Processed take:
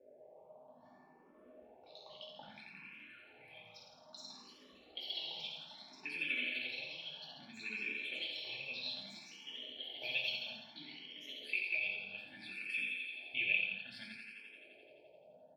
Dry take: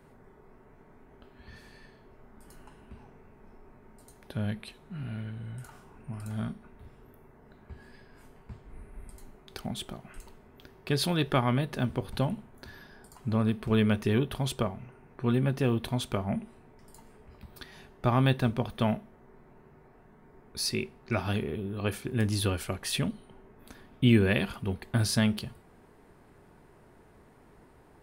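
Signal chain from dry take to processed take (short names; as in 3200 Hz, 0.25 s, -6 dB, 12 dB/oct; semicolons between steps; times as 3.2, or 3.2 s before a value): notch 5900 Hz, Q 12; in parallel at -0.5 dB: compressor 6:1, threshold -33 dBFS, peak gain reduction 15.5 dB; on the sum: notch comb 970 Hz; tempo 1.8×; fixed phaser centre 2900 Hz, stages 4; auto-wah 510–2500 Hz, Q 6.8, up, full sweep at -31 dBFS; on a send: thinning echo 86 ms, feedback 72%, high-pass 220 Hz, level -4 dB; on the sum: echoes that change speed 0.165 s, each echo +4 st, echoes 2, each echo -6 dB; shoebox room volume 270 m³, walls furnished, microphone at 2.5 m; endless phaser +0.61 Hz; gain +2.5 dB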